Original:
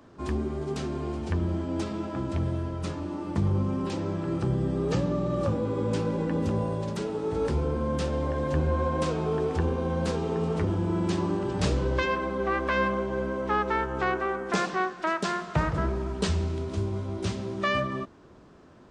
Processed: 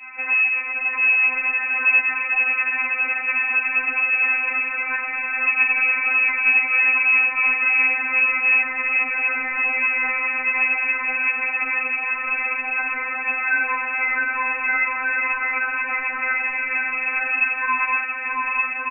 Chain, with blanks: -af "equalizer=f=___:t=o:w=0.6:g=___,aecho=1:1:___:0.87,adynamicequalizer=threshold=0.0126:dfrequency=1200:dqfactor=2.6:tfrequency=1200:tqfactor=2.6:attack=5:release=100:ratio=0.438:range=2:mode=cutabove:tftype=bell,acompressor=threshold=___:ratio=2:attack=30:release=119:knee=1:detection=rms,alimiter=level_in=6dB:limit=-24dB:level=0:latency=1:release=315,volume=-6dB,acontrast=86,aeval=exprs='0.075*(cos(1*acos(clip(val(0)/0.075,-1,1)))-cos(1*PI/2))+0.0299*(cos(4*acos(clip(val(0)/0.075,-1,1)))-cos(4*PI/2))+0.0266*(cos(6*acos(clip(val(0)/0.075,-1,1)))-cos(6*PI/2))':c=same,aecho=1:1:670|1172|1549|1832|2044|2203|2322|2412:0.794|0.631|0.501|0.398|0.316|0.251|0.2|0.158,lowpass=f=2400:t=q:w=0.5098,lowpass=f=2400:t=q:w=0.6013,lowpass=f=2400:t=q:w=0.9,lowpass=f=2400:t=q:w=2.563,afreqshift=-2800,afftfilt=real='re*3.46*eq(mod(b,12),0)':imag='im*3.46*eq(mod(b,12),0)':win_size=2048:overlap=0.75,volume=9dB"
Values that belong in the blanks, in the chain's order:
1600, 5, 5.5, -38dB